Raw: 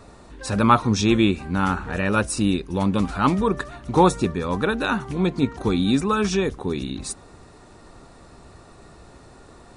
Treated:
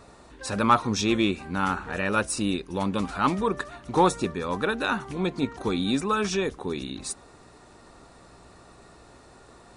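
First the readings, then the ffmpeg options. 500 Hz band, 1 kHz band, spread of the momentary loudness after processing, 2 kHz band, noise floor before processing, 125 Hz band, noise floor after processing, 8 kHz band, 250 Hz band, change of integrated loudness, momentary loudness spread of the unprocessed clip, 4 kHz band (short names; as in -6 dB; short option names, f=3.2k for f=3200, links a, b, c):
-4.0 dB, -3.0 dB, 11 LU, -2.0 dB, -48 dBFS, -8.0 dB, -52 dBFS, -2.0 dB, -6.0 dB, -4.5 dB, 10 LU, -2.0 dB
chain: -af "aeval=exprs='0.75*(cos(1*acos(clip(val(0)/0.75,-1,1)))-cos(1*PI/2))+0.0211*(cos(5*acos(clip(val(0)/0.75,-1,1)))-cos(5*PI/2))+0.0133*(cos(6*acos(clip(val(0)/0.75,-1,1)))-cos(6*PI/2))':c=same,aeval=exprs='val(0)+0.00355*(sin(2*PI*60*n/s)+sin(2*PI*2*60*n/s)/2+sin(2*PI*3*60*n/s)/3+sin(2*PI*4*60*n/s)/4+sin(2*PI*5*60*n/s)/5)':c=same,lowshelf=f=210:g=-9,volume=-3dB"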